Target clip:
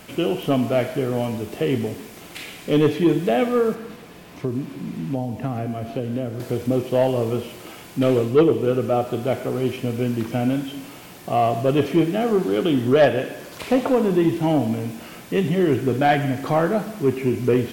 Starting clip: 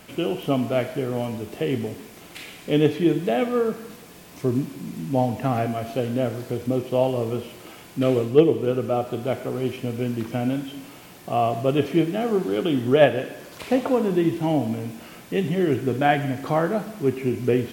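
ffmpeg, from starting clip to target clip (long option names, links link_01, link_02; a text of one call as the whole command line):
ffmpeg -i in.wav -filter_complex "[0:a]asettb=1/sr,asplit=3[link_01][link_02][link_03];[link_01]atrim=end=3.744[link_04];[link_02]atrim=start=3.74:end=6.4,asetpts=PTS-STARTPTS,afade=type=in:duration=0.004:curve=qsin,afade=type=out:start_time=2.656:duration=0.004:curve=qsin,acrossover=split=430|4000[link_05][link_06][link_07];[link_05]acompressor=threshold=-27dB:ratio=4[link_08];[link_06]acompressor=threshold=-37dB:ratio=4[link_09];[link_07]acompressor=threshold=-60dB:ratio=4[link_10];[link_08][link_09][link_10]amix=inputs=3:normalize=0[link_11];[link_03]atrim=start=6.396[link_12];[link_04][link_11]acrossfade=duration=0.004:curve1=hsin:curve2=qsin[link_13];[link_13][link_12]acrossfade=duration=0.004:curve1=qsin:curve2=hsin,asoftclip=type=tanh:threshold=-11.5dB,volume=3.5dB" out.wav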